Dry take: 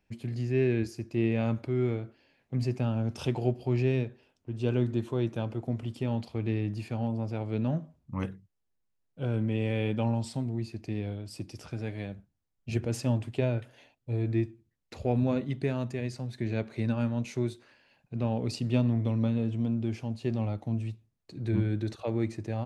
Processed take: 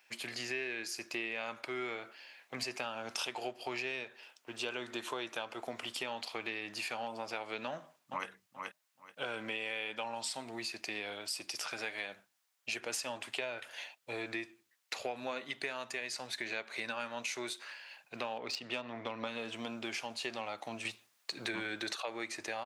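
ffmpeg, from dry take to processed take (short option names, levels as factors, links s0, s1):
-filter_complex "[0:a]asplit=2[s0][s1];[s1]afade=t=in:st=7.68:d=0.01,afade=t=out:st=8.28:d=0.01,aecho=0:1:430|860|1290:0.266073|0.0532145|0.0106429[s2];[s0][s2]amix=inputs=2:normalize=0,asettb=1/sr,asplit=3[s3][s4][s5];[s3]atrim=end=18.384[s6];[s4]atrim=start=18.38:end=19.27,asetpts=PTS-STARTPTS,afade=t=in:d=0.004:c=qsin,afade=t=out:st=0.886:d=0.004:c=qsin,adynamicsmooth=sensitivity=3.5:basefreq=3100[s7];[s5]atrim=start=19.266[s8];[s6][s7]acrossfade=d=0.004:c1=hsin:c2=qsin[s9];[s9][s8]acrossfade=d=0.004:c1=qsin:c2=hsin,asettb=1/sr,asplit=3[s10][s11][s12];[s10]atrim=end=20.854[s13];[s11]atrim=start=20.85:end=22.02,asetpts=PTS-STARTPTS,afade=t=in:d=0.004:c=qsin,afade=t=out:st=1.166:d=0.004:c=qsin,acontrast=63[s14];[s12]atrim=start=22.016[s15];[s13][s14]acrossfade=d=0.004:c1=hsin:c2=qsin[s16];[s16][s15]acrossfade=d=0.004:c1=qsin:c2=hsin,highpass=1100,acompressor=threshold=0.00316:ratio=6,volume=5.31"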